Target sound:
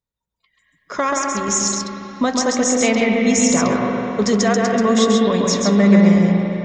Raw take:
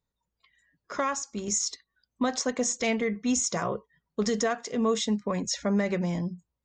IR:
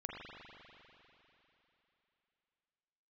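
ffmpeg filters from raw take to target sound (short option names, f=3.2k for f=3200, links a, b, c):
-filter_complex "[0:a]dynaudnorm=f=260:g=5:m=13.5dB,asplit=2[a][b];[1:a]atrim=start_sample=2205,adelay=134[c];[b][c]afir=irnorm=-1:irlink=0,volume=1dB[d];[a][d]amix=inputs=2:normalize=0,volume=-4.5dB"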